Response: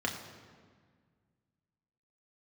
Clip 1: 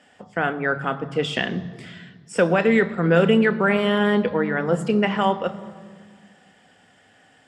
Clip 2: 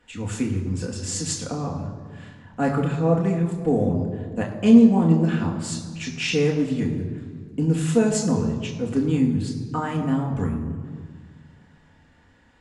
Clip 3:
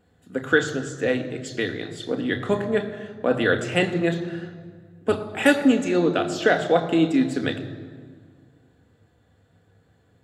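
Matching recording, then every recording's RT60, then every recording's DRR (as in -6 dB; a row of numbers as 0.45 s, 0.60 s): 2; 1.7 s, 1.7 s, 1.7 s; 10.0 dB, -0.5 dB, 5.0 dB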